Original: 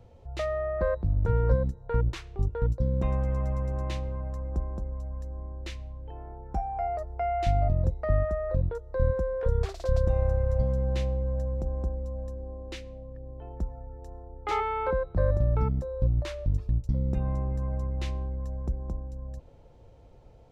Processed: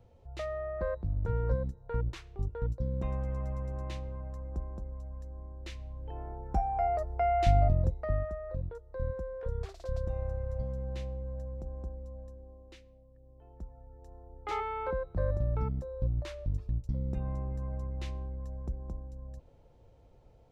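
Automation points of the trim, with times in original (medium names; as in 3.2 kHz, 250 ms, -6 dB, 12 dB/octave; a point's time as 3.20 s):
5.57 s -6.5 dB
6.18 s +1 dB
7.58 s +1 dB
8.40 s -9.5 dB
12.14 s -9.5 dB
13.09 s -17 dB
14.35 s -6 dB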